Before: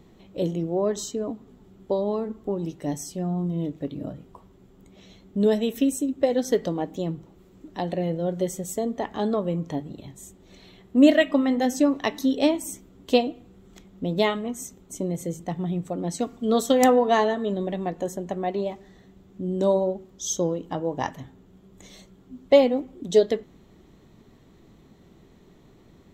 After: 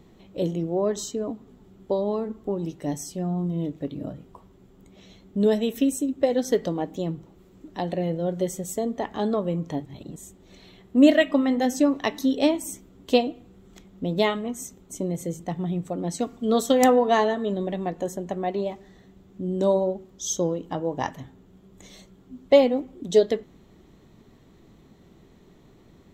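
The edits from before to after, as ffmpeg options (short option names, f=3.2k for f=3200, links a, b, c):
-filter_complex "[0:a]asplit=3[a][b][c];[a]atrim=end=9.852[d];[b]atrim=start=9.848:end=10.162,asetpts=PTS-STARTPTS,areverse[e];[c]atrim=start=10.158[f];[d][e]acrossfade=d=0.004:c1=hsin:c2=hsin[g];[g][f]acrossfade=d=0.004:c1=hsin:c2=hsin"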